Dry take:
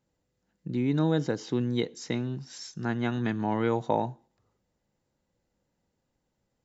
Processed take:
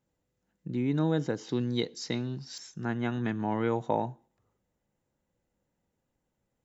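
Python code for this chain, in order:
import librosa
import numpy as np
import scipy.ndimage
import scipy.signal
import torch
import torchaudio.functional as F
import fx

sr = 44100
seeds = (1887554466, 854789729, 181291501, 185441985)

y = fx.peak_eq(x, sr, hz=4600.0, db=fx.steps((0.0, -4.5), (1.49, 9.5), (2.58, -7.5)), octaves=0.53)
y = y * 10.0 ** (-2.0 / 20.0)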